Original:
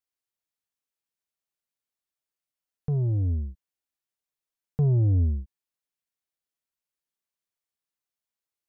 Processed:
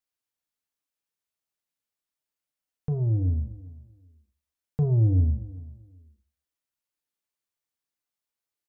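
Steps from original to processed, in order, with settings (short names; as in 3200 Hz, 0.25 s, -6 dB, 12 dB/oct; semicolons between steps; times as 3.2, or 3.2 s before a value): feedback echo 0.39 s, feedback 22%, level -19 dB; FDN reverb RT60 0.48 s, low-frequency decay 1×, high-frequency decay 0.8×, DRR 9.5 dB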